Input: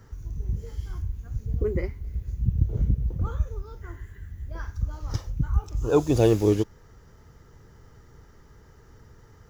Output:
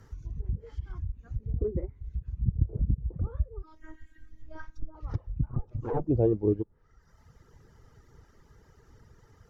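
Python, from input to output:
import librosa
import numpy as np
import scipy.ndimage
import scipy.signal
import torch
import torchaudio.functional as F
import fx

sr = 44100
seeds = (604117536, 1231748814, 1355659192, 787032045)

y = fx.lower_of_two(x, sr, delay_ms=8.2, at=(5.46, 6.07))
y = fx.dereverb_blind(y, sr, rt60_s=0.99)
y = fx.env_lowpass_down(y, sr, base_hz=570.0, full_db=-24.0)
y = fx.robotise(y, sr, hz=316.0, at=(3.63, 4.95))
y = F.gain(torch.from_numpy(y), -2.5).numpy()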